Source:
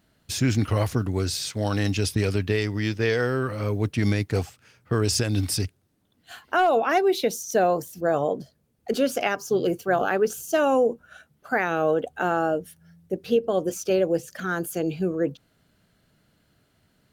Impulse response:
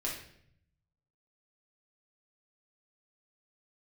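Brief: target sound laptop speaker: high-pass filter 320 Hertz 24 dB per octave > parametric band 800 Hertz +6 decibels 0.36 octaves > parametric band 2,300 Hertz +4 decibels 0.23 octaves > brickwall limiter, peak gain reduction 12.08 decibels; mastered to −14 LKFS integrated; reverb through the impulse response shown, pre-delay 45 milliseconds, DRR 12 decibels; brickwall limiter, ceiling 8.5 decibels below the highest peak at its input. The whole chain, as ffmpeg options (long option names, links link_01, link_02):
-filter_complex "[0:a]alimiter=limit=-20.5dB:level=0:latency=1,asplit=2[link_01][link_02];[1:a]atrim=start_sample=2205,adelay=45[link_03];[link_02][link_03]afir=irnorm=-1:irlink=0,volume=-15dB[link_04];[link_01][link_04]amix=inputs=2:normalize=0,highpass=frequency=320:width=0.5412,highpass=frequency=320:width=1.3066,equalizer=frequency=800:width_type=o:width=0.36:gain=6,equalizer=frequency=2300:width_type=o:width=0.23:gain=4,volume=22.5dB,alimiter=limit=-5dB:level=0:latency=1"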